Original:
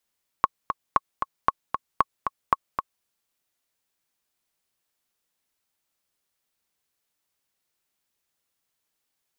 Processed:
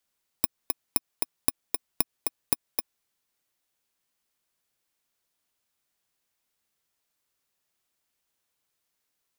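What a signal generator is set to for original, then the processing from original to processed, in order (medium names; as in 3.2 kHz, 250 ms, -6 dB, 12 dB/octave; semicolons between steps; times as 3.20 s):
metronome 230 bpm, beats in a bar 2, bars 5, 1.1 kHz, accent 7 dB -4.5 dBFS
bit-reversed sample order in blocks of 32 samples; compression, threshold -20 dBFS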